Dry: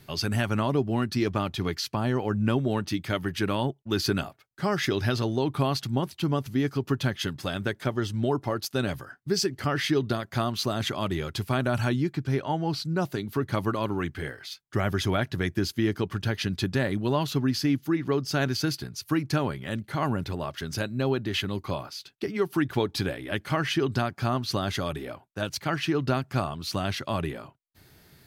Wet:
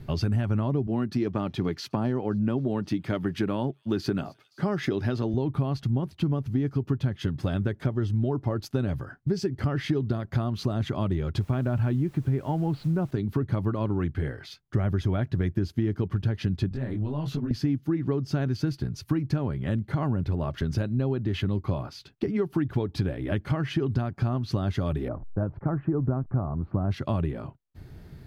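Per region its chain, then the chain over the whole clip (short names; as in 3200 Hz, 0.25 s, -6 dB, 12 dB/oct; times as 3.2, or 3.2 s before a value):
0.87–5.34 HPF 170 Hz + thin delay 0.261 s, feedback 69%, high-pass 4100 Hz, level -22.5 dB
11.4–13.11 LPF 3700 Hz 24 dB/oct + requantised 8-bit, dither triangular
16.69–17.51 compressor 10:1, threshold -29 dBFS + detuned doubles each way 47 cents
25.08–26.91 level-crossing sampler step -48 dBFS + de-esser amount 35% + LPF 1300 Hz 24 dB/oct
whole clip: tilt -3.5 dB/oct; compressor 4:1, threshold -26 dBFS; gain +2 dB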